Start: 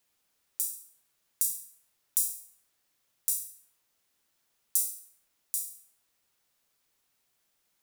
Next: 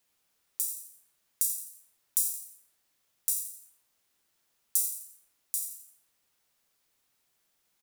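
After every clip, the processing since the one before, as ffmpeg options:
ffmpeg -i in.wav -filter_complex "[0:a]asplit=5[link_01][link_02][link_03][link_04][link_05];[link_02]adelay=85,afreqshift=91,volume=-10dB[link_06];[link_03]adelay=170,afreqshift=182,volume=-18dB[link_07];[link_04]adelay=255,afreqshift=273,volume=-25.9dB[link_08];[link_05]adelay=340,afreqshift=364,volume=-33.9dB[link_09];[link_01][link_06][link_07][link_08][link_09]amix=inputs=5:normalize=0" out.wav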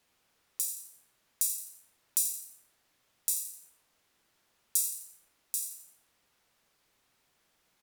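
ffmpeg -i in.wav -af "aemphasis=mode=reproduction:type=cd,volume=7dB" out.wav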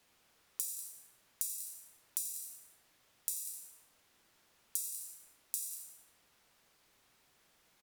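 ffmpeg -i in.wav -filter_complex "[0:a]acrossover=split=130[link_01][link_02];[link_02]acompressor=threshold=-36dB:ratio=10[link_03];[link_01][link_03]amix=inputs=2:normalize=0,aecho=1:1:193:0.211,volume=2.5dB" out.wav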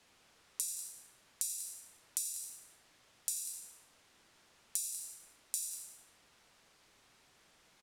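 ffmpeg -i in.wav -af "lowpass=9600,volume=4.5dB" out.wav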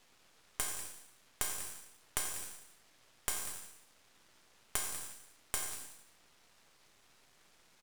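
ffmpeg -i in.wav -af "aeval=exprs='max(val(0),0)':channel_layout=same,volume=4.5dB" out.wav

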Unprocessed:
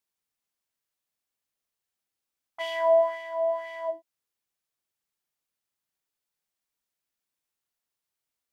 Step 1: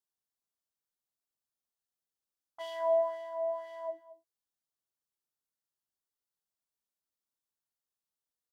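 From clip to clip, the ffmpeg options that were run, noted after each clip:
ffmpeg -i in.wav -filter_complex "[0:a]equalizer=frequency=2300:width_type=o:width=0.47:gain=-14.5,asplit=2[link_01][link_02];[link_02]adelay=221.6,volume=-16dB,highshelf=frequency=4000:gain=-4.99[link_03];[link_01][link_03]amix=inputs=2:normalize=0,volume=-7dB" out.wav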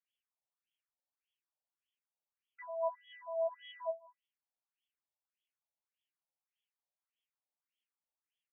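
ffmpeg -i in.wav -filter_complex "[0:a]highshelf=frequency=2500:width_type=q:width=1.5:gain=12.5,acrossover=split=440[link_01][link_02];[link_02]acompressor=threshold=-33dB:ratio=10[link_03];[link_01][link_03]amix=inputs=2:normalize=0,afftfilt=real='re*between(b*sr/1024,660*pow(2500/660,0.5+0.5*sin(2*PI*1.7*pts/sr))/1.41,660*pow(2500/660,0.5+0.5*sin(2*PI*1.7*pts/sr))*1.41)':imag='im*between(b*sr/1024,660*pow(2500/660,0.5+0.5*sin(2*PI*1.7*pts/sr))/1.41,660*pow(2500/660,0.5+0.5*sin(2*PI*1.7*pts/sr))*1.41)':win_size=1024:overlap=0.75,volume=2.5dB" out.wav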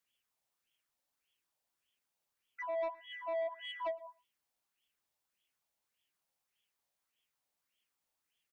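ffmpeg -i in.wav -af "acompressor=threshold=-38dB:ratio=12,asoftclip=type=tanh:threshold=-40dB,aecho=1:1:115:0.0668,volume=8.5dB" out.wav

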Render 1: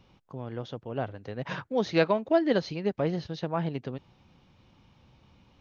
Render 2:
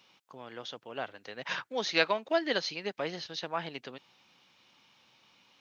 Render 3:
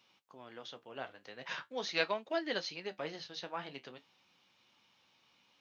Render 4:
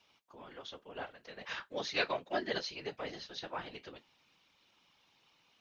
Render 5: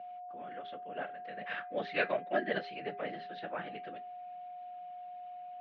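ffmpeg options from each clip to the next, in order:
ffmpeg -i in.wav -af "highpass=210,tiltshelf=frequency=970:gain=-9,volume=-1.5dB" out.wav
ffmpeg -i in.wav -af "flanger=delay=8.2:depth=8.2:regen=-55:speed=0.43:shape=triangular,volume=-2dB" out.wav
ffmpeg -i in.wav -af "afftfilt=real='hypot(re,im)*cos(2*PI*random(0))':imag='hypot(re,im)*sin(2*PI*random(1))':win_size=512:overlap=0.75,volume=6dB" out.wav
ffmpeg -i in.wav -af "aeval=exprs='val(0)+0.00562*sin(2*PI*720*n/s)':channel_layout=same,highpass=frequency=140:width=0.5412,highpass=frequency=140:width=1.3066,equalizer=frequency=190:width_type=q:width=4:gain=6,equalizer=frequency=620:width_type=q:width=4:gain=5,equalizer=frequency=970:width_type=q:width=4:gain=-8,equalizer=frequency=1700:width_type=q:width=4:gain=4,lowpass=frequency=2800:width=0.5412,lowpass=frequency=2800:width=1.3066,bandreject=frequency=405.8:width_type=h:width=4,bandreject=frequency=811.6:width_type=h:width=4,bandreject=frequency=1217.4:width_type=h:width=4,bandreject=frequency=1623.2:width_type=h:width=4,bandreject=frequency=2029:width_type=h:width=4,bandreject=frequency=2434.8:width_type=h:width=4,volume=1dB" out.wav

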